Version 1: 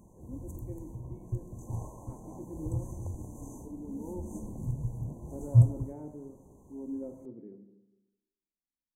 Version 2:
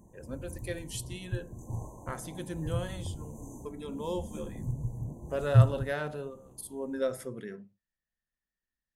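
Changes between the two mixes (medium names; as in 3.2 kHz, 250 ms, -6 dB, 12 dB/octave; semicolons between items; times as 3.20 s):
speech: remove cascade formant filter u; reverb: off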